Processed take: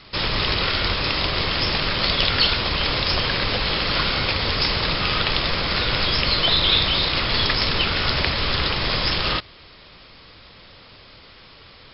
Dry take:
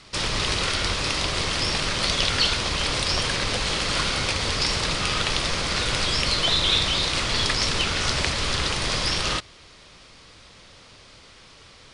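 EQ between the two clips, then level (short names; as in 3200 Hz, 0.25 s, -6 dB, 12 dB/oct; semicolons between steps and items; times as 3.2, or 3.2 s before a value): brick-wall FIR low-pass 5400 Hz; +3.0 dB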